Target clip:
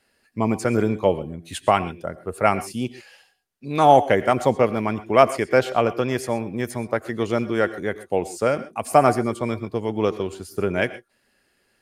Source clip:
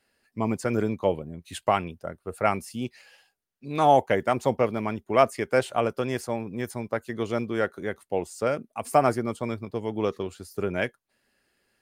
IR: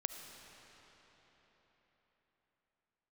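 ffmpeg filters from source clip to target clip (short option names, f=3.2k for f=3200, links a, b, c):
-filter_complex "[0:a]asettb=1/sr,asplit=3[a][b][c];[a]atrim=end=5.464[d];[b]atrim=start=5.46:end=6.18,asetpts=PTS-STARTPTS,afade=t=in:d=0.004:c=qsin,afade=t=out:st=0.716:d=0.004:c=qsin,equalizer=f=9k:w=3.1:g=-13[e];[c]atrim=start=6.176[f];[d][e]acrossfade=d=0.004:c1=hsin:c2=qsin[g];[g][f]acrossfade=d=0.004:c1=qsin:c2=hsin[h];[1:a]atrim=start_sample=2205,atrim=end_sample=3528,asetrate=25578,aresample=44100[i];[h][i]afir=irnorm=-1:irlink=0,volume=3.5dB"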